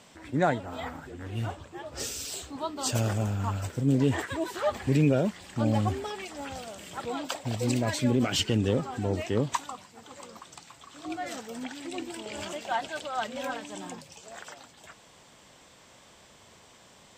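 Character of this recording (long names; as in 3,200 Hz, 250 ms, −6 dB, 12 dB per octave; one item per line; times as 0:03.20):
background noise floor −56 dBFS
spectral slope −5.5 dB per octave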